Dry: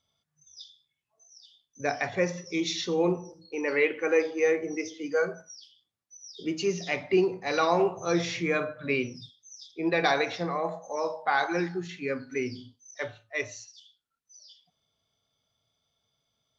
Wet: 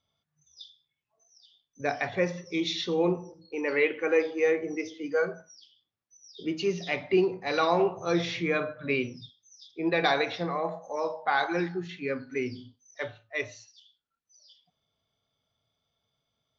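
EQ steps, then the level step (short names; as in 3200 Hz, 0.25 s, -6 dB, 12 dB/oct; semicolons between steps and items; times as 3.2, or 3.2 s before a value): dynamic EQ 3600 Hz, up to +5 dB, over -49 dBFS, Q 2.1; air absorption 120 m; 0.0 dB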